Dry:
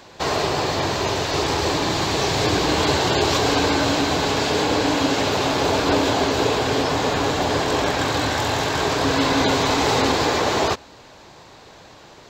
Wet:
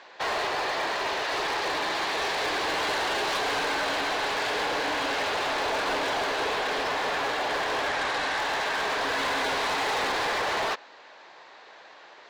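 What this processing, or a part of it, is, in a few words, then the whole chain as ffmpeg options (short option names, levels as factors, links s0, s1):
megaphone: -filter_complex "[0:a]highpass=570,lowpass=3800,equalizer=f=1800:t=o:w=0.5:g=5,asoftclip=type=hard:threshold=0.0794,asettb=1/sr,asplit=3[s0][s1][s2];[s0]atrim=end=7.884[s3];[s1]atrim=start=7.88:end=8.38,asetpts=PTS-STARTPTS,afade=t=in:d=0.004:c=qsin,afade=t=out:st=0.496:d=0.004:c=qsin,lowpass=11000[s4];[s2]atrim=start=8.376[s5];[s3][s4]acrossfade=d=0.004:c1=hsin:c2=qsin[s6];[s6][s5]acrossfade=d=0.004:c1=qsin:c2=hsin,volume=0.75"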